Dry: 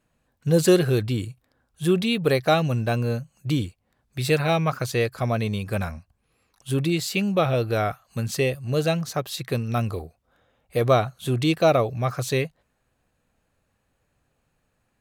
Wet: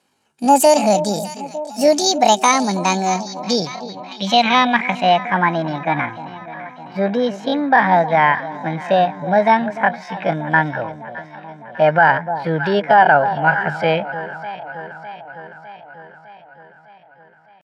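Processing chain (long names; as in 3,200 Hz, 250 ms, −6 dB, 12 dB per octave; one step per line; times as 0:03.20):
gliding playback speed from 169% → 110%
high-pass filter 240 Hz 12 dB per octave
comb filter 1.3 ms, depth 40%
delay that swaps between a low-pass and a high-pass 185 ms, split 940 Hz, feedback 78%, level −13.5 dB
tempo change 0.61×
low-pass filter sweep 9,300 Hz → 1,800 Hz, 0:02.45–0:05.46
boost into a limiter +8 dB
level −1 dB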